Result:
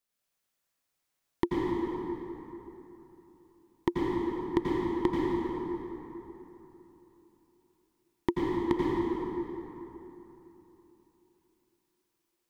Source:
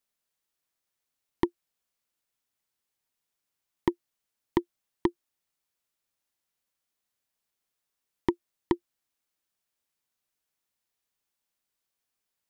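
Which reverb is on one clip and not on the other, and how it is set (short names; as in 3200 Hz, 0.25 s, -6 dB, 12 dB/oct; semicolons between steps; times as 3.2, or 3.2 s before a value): plate-style reverb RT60 3.5 s, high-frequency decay 0.55×, pre-delay 75 ms, DRR -5.5 dB; gain -2.5 dB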